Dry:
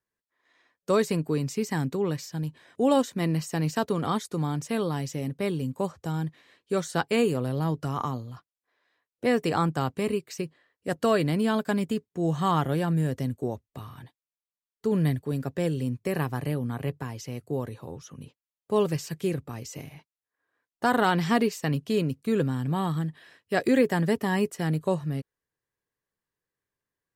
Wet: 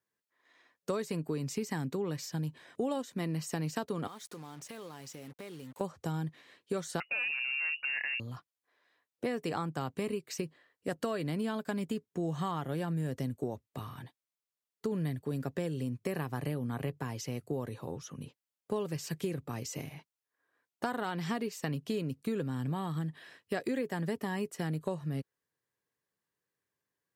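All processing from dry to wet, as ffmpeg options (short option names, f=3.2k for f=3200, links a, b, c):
-filter_complex "[0:a]asettb=1/sr,asplit=3[a][b][c];[a]atrim=end=4.074[d];[b]atrim=start=4.07:end=5.81,asetpts=PTS-STARTPTS,afade=t=in:d=0.004:c=qsin,afade=t=out:st=1.736:d=0.004:c=qsin,equalizer=f=140:w=0.5:g=-9,acompressor=threshold=-44dB:ratio=4:attack=3.2:release=140:knee=1:detection=peak,acrusher=bits=8:mix=0:aa=0.5[e];[c]atrim=start=5.806[f];[d][e]acrossfade=d=0.004:c1=hsin:c2=qsin[g];[g][f]acrossfade=d=0.004:c1=qsin:c2=hsin,asettb=1/sr,asplit=3[h][i][j];[h]atrim=end=7.004[k];[i]atrim=start=7:end=8.2,asetpts=PTS-STARTPTS,afade=t=in:d=0.004:c=qsin,afade=t=out:st=1.196:d=0.004:c=qsin,asoftclip=type=hard:threshold=-22.5dB,lowpass=f=2.5k:t=q:w=0.5098,lowpass=f=2.5k:t=q:w=0.6013,lowpass=f=2.5k:t=q:w=0.9,lowpass=f=2.5k:t=q:w=2.563,afreqshift=-2900[l];[j]atrim=start=8.196[m];[k][l]acrossfade=d=0.004:c1=hsin:c2=qsin[n];[n][m]acrossfade=d=0.004:c1=qsin:c2=hsin,highpass=99,acompressor=threshold=-31dB:ratio=6"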